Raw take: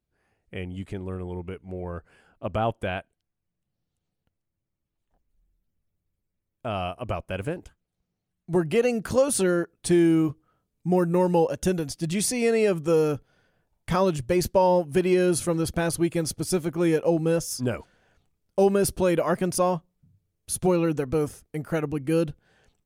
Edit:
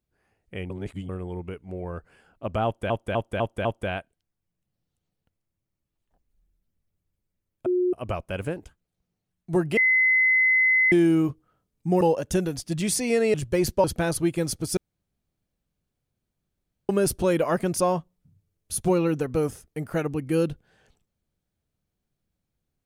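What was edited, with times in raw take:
0:00.70–0:01.09: reverse
0:02.65–0:02.90: repeat, 5 plays
0:06.66–0:06.93: beep over 361 Hz −19.5 dBFS
0:08.77–0:09.92: beep over 2,040 Hz −16.5 dBFS
0:11.01–0:11.33: remove
0:12.66–0:14.11: remove
0:14.61–0:15.62: remove
0:16.55–0:18.67: fill with room tone

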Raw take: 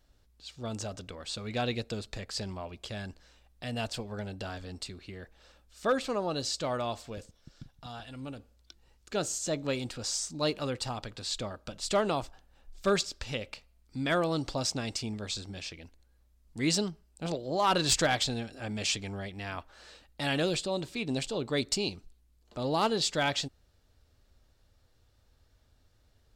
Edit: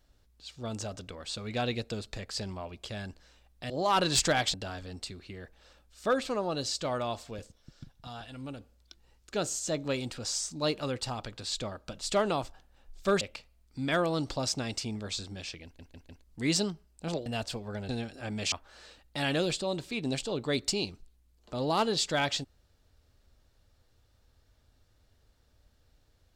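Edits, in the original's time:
0:03.70–0:04.33: swap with 0:17.44–0:18.28
0:13.00–0:13.39: remove
0:15.82: stutter in place 0.15 s, 4 plays
0:18.91–0:19.56: remove

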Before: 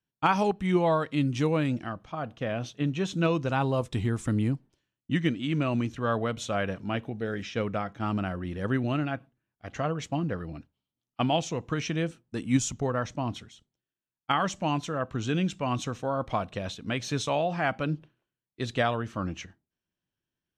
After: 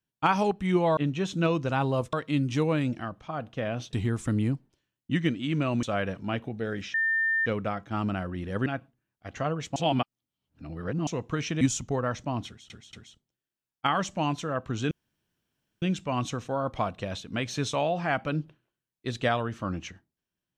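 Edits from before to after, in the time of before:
0:02.77–0:03.93: move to 0:00.97
0:05.83–0:06.44: remove
0:07.55: insert tone 1,800 Hz −22.5 dBFS 0.52 s
0:08.75–0:09.05: remove
0:10.15–0:11.46: reverse
0:12.00–0:12.52: remove
0:13.38: stutter 0.23 s, 3 plays
0:15.36: splice in room tone 0.91 s

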